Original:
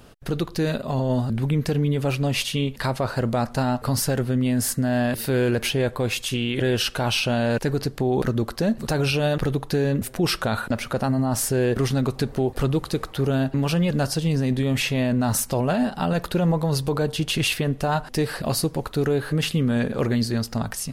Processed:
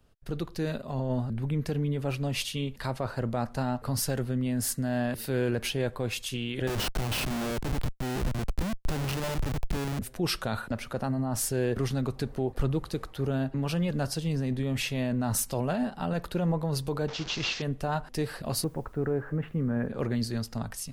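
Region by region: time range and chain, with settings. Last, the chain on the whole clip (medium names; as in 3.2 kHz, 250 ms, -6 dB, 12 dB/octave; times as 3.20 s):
6.67–9.99 s: high-pass 59 Hz + Schmitt trigger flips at -24 dBFS
17.08–17.62 s: one-bit delta coder 32 kbps, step -24.5 dBFS + tone controls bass -4 dB, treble +3 dB
18.64–19.88 s: low-pass 1.9 kHz 24 dB/octave + word length cut 10-bit, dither triangular
whole clip: bass shelf 63 Hz +6 dB; three bands expanded up and down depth 40%; trim -7.5 dB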